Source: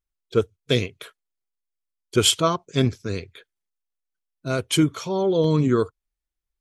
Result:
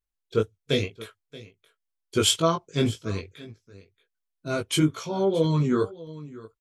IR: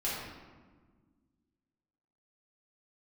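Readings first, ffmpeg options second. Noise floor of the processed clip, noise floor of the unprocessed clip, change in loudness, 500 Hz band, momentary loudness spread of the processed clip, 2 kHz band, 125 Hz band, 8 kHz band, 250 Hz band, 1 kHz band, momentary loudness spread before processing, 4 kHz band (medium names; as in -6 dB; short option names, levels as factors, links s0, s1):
-83 dBFS, -85 dBFS, -3.0 dB, -3.0 dB, 20 LU, -3.0 dB, -2.5 dB, -3.0 dB, -3.0 dB, -2.5 dB, 12 LU, -3.0 dB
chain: -af "aecho=1:1:628:0.112,flanger=delay=18:depth=2.6:speed=2"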